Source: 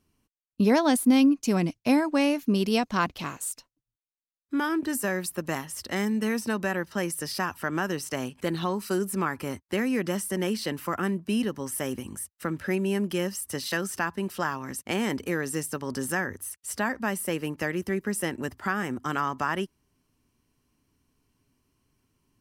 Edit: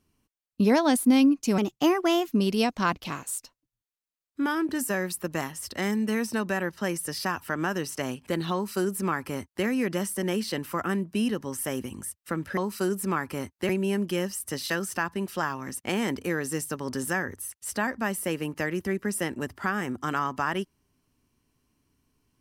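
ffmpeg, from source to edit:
ffmpeg -i in.wav -filter_complex "[0:a]asplit=5[link_01][link_02][link_03][link_04][link_05];[link_01]atrim=end=1.584[link_06];[link_02]atrim=start=1.58:end=2.41,asetpts=PTS-STARTPTS,asetrate=52920,aresample=44100,atrim=end_sample=30502,asetpts=PTS-STARTPTS[link_07];[link_03]atrim=start=2.406:end=12.712[link_08];[link_04]atrim=start=8.668:end=9.792[link_09];[link_05]atrim=start=12.708[link_10];[link_06][link_07]acrossfade=duration=0.004:curve1=hsin:curve2=hsin[link_11];[link_11][link_08]acrossfade=duration=0.004:curve1=hsin:curve2=hsin[link_12];[link_12][link_09]acrossfade=duration=0.004:curve1=hsin:curve2=hsin[link_13];[link_13][link_10]acrossfade=duration=0.004:curve1=hsin:curve2=hsin" out.wav

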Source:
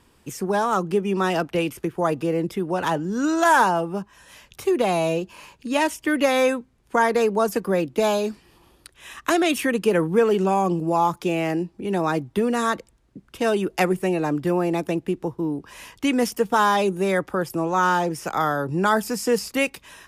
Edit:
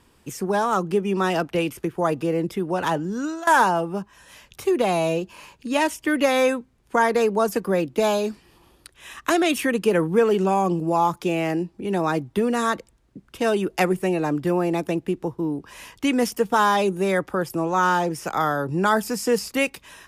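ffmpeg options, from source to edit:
ffmpeg -i in.wav -filter_complex "[0:a]asplit=2[link_01][link_02];[link_01]atrim=end=3.47,asetpts=PTS-STARTPTS,afade=type=out:start_time=3.04:duration=0.43:silence=0.105925[link_03];[link_02]atrim=start=3.47,asetpts=PTS-STARTPTS,afade=type=in:duration=0.004:curve=hsin:silence=0.105925[link_04];[link_03][link_04]concat=n=2:v=0:a=1" out.wav

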